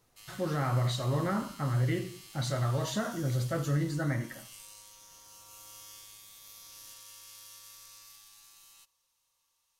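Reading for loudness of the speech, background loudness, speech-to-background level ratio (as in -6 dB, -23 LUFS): -32.0 LUFS, -49.5 LUFS, 17.5 dB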